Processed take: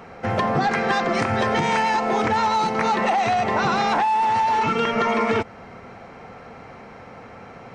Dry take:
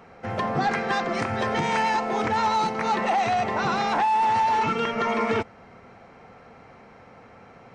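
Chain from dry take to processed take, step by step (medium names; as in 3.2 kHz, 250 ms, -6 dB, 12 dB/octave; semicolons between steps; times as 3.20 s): compression, threshold -25 dBFS, peak gain reduction 6.5 dB; trim +7.5 dB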